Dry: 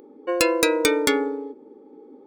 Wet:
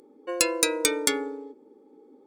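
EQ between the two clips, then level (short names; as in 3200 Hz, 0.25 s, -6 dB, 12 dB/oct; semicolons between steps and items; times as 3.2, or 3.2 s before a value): bell 8600 Hz +12 dB 2 oct; notches 60/120 Hz; -7.5 dB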